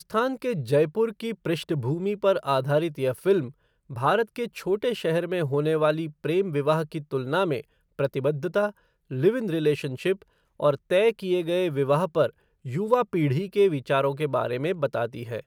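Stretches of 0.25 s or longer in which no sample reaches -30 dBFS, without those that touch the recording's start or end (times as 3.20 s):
3.48–3.92 s
7.60–7.99 s
8.69–9.11 s
10.13–10.60 s
12.27–12.67 s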